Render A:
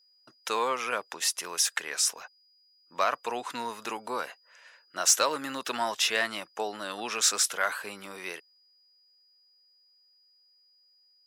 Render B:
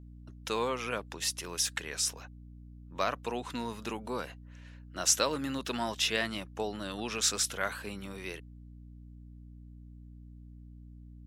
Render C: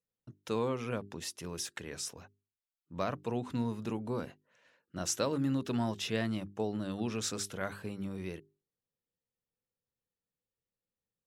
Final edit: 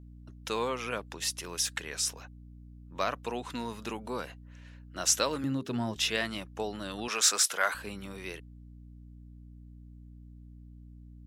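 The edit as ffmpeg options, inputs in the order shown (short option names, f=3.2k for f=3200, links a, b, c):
-filter_complex "[1:a]asplit=3[a][b][c];[a]atrim=end=5.442[d];[2:a]atrim=start=5.438:end=5.962[e];[b]atrim=start=5.958:end=7.082[f];[0:a]atrim=start=7.078:end=7.742[g];[c]atrim=start=7.738[h];[d][e]acrossfade=d=0.004:c1=hsin:c2=hsin[i];[i][f]acrossfade=d=0.004:c1=hsin:c2=hsin[j];[j][g]acrossfade=d=0.004:c1=hsin:c2=hsin[k];[k][h]acrossfade=d=0.004:c1=hsin:c2=hsin"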